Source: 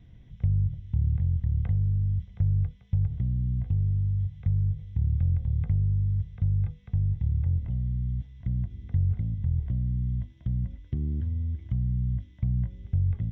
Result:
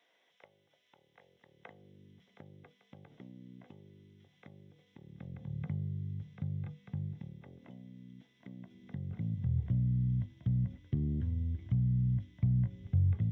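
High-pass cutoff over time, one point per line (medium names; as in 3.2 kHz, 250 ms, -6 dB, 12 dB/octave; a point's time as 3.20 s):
high-pass 24 dB/octave
1.10 s 530 Hz
2.02 s 290 Hz
4.99 s 290 Hz
5.53 s 150 Hz
7.04 s 150 Hz
7.47 s 260 Hz
8.57 s 260 Hz
9.62 s 92 Hz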